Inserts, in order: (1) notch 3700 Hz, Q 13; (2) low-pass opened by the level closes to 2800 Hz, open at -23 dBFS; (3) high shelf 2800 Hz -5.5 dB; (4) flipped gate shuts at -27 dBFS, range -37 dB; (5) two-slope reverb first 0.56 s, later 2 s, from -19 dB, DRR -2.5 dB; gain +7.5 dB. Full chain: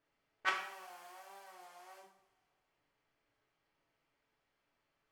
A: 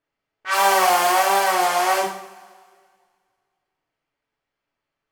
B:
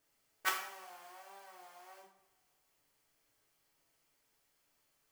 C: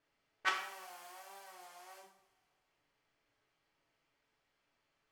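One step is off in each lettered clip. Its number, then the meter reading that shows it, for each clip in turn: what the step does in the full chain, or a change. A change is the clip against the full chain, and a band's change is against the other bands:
4, momentary loudness spread change -7 LU; 2, 8 kHz band +10.5 dB; 3, 8 kHz band +4.0 dB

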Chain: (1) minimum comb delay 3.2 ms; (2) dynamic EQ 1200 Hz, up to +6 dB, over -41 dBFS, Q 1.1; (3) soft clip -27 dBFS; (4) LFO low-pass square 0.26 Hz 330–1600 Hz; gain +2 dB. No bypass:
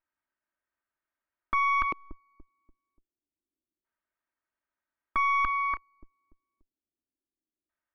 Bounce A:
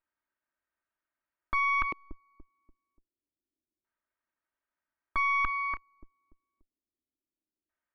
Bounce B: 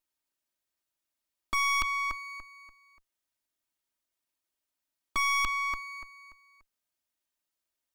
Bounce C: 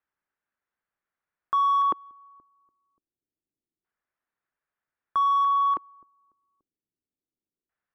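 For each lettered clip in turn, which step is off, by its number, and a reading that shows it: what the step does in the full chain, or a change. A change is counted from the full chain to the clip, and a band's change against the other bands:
2, 2 kHz band +3.0 dB; 4, 4 kHz band +17.0 dB; 1, crest factor change -5.5 dB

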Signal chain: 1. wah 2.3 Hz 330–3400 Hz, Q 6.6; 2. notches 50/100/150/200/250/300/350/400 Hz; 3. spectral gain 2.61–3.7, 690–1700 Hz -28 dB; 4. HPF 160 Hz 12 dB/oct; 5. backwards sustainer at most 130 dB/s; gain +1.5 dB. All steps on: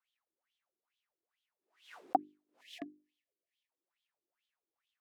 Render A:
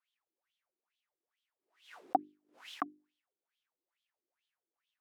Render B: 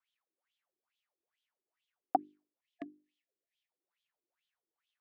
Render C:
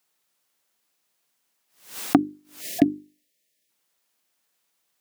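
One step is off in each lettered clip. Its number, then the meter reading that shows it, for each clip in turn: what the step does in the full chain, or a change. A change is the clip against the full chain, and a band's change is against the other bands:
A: 3, 2 kHz band +4.0 dB; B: 5, momentary loudness spread change -6 LU; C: 1, 1 kHz band -13.0 dB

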